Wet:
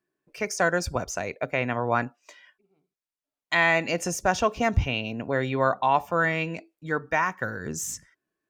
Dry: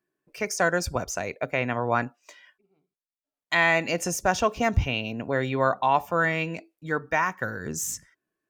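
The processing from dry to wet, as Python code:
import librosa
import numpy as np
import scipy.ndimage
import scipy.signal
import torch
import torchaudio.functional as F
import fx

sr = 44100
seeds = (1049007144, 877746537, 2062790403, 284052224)

y = fx.high_shelf(x, sr, hz=11000.0, db=-7.0)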